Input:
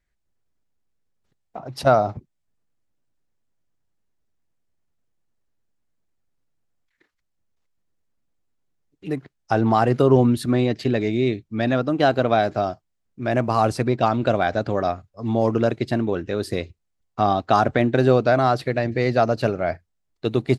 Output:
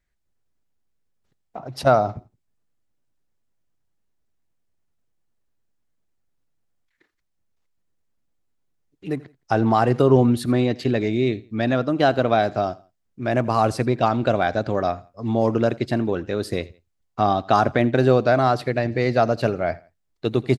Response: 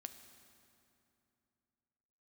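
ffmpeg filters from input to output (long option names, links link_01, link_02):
-af "aecho=1:1:84|168:0.0794|0.0254"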